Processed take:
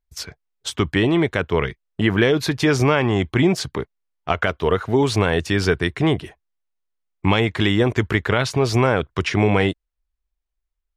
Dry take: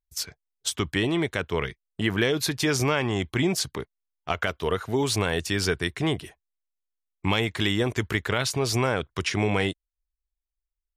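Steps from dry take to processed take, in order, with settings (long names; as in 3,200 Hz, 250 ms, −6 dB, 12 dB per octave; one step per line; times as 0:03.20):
low-pass filter 2,200 Hz 6 dB per octave
level +7.5 dB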